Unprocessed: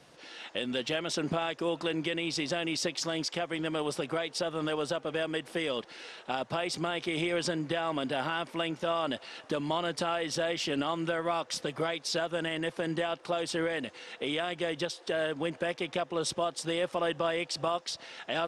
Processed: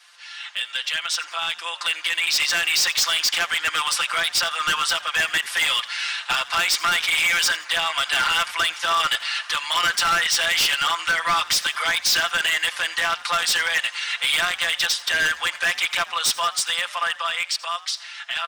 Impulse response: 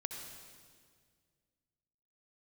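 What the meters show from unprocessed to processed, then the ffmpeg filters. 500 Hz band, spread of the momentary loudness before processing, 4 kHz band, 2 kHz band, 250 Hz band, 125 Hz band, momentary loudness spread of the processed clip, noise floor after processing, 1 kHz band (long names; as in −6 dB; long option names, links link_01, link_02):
−6.0 dB, 4 LU, +15.5 dB, +16.0 dB, −13.0 dB, −8.5 dB, 7 LU, −41 dBFS, +10.5 dB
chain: -filter_complex "[0:a]highpass=frequency=1200:width=0.5412,highpass=frequency=1200:width=1.3066,aecho=1:1:5.8:0.98,dynaudnorm=framelen=130:gausssize=31:maxgain=10dB,asoftclip=type=hard:threshold=-23.5dB,asplit=4[link_01][link_02][link_03][link_04];[link_02]adelay=84,afreqshift=61,volume=-19dB[link_05];[link_03]adelay=168,afreqshift=122,volume=-29.2dB[link_06];[link_04]adelay=252,afreqshift=183,volume=-39.3dB[link_07];[link_01][link_05][link_06][link_07]amix=inputs=4:normalize=0,volume=7dB"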